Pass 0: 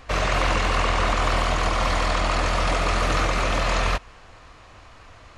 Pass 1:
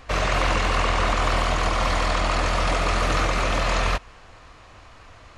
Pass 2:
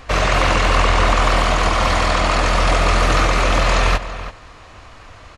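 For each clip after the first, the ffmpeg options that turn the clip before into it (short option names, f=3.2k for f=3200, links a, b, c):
-af anull
-filter_complex "[0:a]asplit=2[a][b];[b]adelay=332.4,volume=-12dB,highshelf=f=4k:g=-7.48[c];[a][c]amix=inputs=2:normalize=0,volume=6dB"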